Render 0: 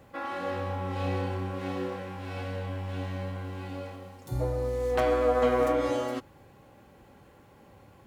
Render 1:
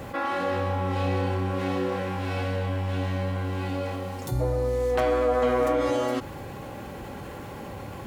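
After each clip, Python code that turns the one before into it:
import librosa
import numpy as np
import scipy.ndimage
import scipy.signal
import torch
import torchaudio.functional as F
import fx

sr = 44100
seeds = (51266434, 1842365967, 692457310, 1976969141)

y = fx.env_flatten(x, sr, amount_pct=50)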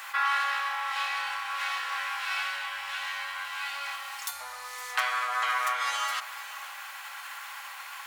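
y = scipy.signal.sosfilt(scipy.signal.cheby2(4, 50, 440.0, 'highpass', fs=sr, output='sos'), x)
y = y + 10.0 ** (-16.0 / 20.0) * np.pad(y, (int(513 * sr / 1000.0), 0))[:len(y)]
y = F.gain(torch.from_numpy(y), 7.0).numpy()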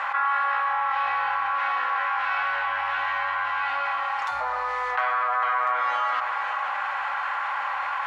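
y = scipy.signal.sosfilt(scipy.signal.butter(2, 1200.0, 'lowpass', fs=sr, output='sos'), x)
y = fx.env_flatten(y, sr, amount_pct=70)
y = F.gain(torch.from_numpy(y), 6.0).numpy()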